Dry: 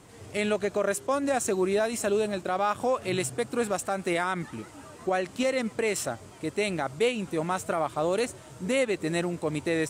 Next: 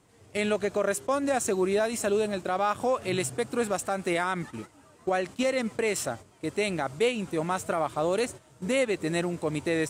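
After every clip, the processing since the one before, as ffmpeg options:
-af "agate=range=-10dB:threshold=-39dB:ratio=16:detection=peak"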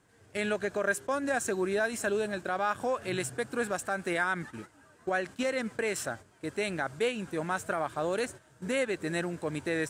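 -af "equalizer=f=1.6k:t=o:w=0.28:g=11.5,volume=-4.5dB"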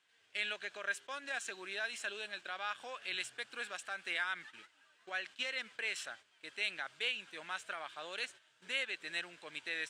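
-af "bandpass=f=3.1k:t=q:w=2.2:csg=0,volume=4dB"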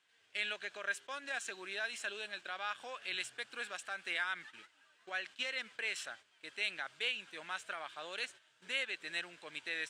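-af anull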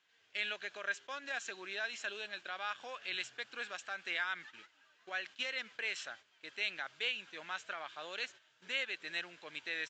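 -af "aresample=16000,aresample=44100"

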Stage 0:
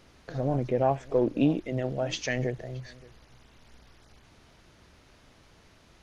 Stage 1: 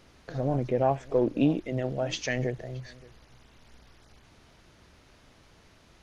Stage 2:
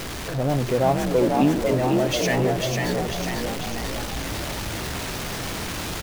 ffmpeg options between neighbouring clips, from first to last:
-af anull
-filter_complex "[0:a]aeval=exprs='val(0)+0.5*0.0355*sgn(val(0))':c=same,asplit=9[a][b][c][d][e][f][g][h][i];[b]adelay=495,afreqshift=50,volume=-3.5dB[j];[c]adelay=990,afreqshift=100,volume=-8.2dB[k];[d]adelay=1485,afreqshift=150,volume=-13dB[l];[e]adelay=1980,afreqshift=200,volume=-17.7dB[m];[f]adelay=2475,afreqshift=250,volume=-22.4dB[n];[g]adelay=2970,afreqshift=300,volume=-27.2dB[o];[h]adelay=3465,afreqshift=350,volume=-31.9dB[p];[i]adelay=3960,afreqshift=400,volume=-36.6dB[q];[a][j][k][l][m][n][o][p][q]amix=inputs=9:normalize=0,volume=2.5dB"

